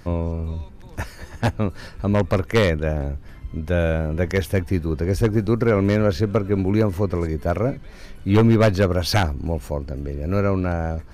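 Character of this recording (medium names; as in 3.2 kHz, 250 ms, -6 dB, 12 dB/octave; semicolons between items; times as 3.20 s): noise floor -41 dBFS; spectral tilt -6.5 dB/octave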